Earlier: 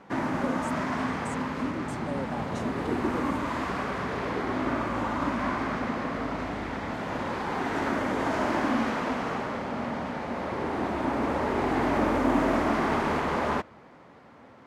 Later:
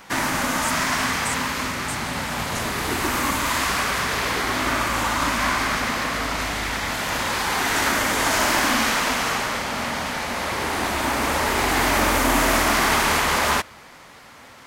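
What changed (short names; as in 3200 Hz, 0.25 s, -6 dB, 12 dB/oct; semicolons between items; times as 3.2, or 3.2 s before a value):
speech -9.5 dB; master: remove band-pass 270 Hz, Q 0.58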